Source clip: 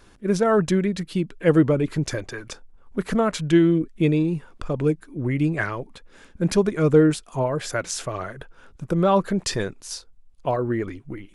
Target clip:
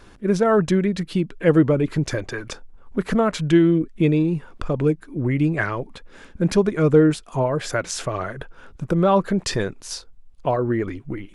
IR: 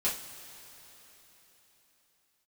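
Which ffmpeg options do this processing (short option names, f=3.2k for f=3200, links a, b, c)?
-filter_complex "[0:a]highshelf=f=5.4k:g=-6.5,asplit=2[a][b];[b]acompressor=threshold=-29dB:ratio=6,volume=-1.5dB[c];[a][c]amix=inputs=2:normalize=0"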